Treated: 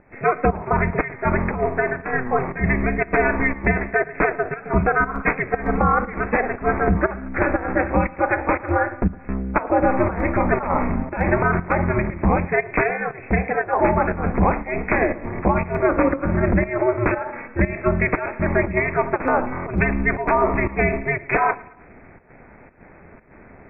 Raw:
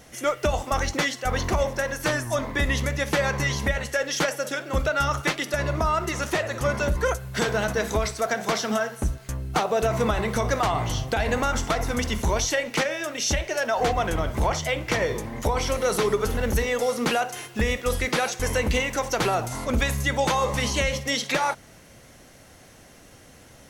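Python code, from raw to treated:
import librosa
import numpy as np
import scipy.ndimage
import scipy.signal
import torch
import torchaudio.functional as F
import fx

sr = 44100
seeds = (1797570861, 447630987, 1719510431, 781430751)

p1 = fx.brickwall_lowpass(x, sr, high_hz=2500.0)
p2 = fx.volume_shaper(p1, sr, bpm=119, per_beat=1, depth_db=-12, release_ms=113.0, shape='slow start')
p3 = p2 + fx.echo_feedback(p2, sr, ms=111, feedback_pct=46, wet_db=-21.0, dry=0)
p4 = p3 * np.sin(2.0 * np.pi * 130.0 * np.arange(len(p3)) / sr)
y = p4 * librosa.db_to_amplitude(8.5)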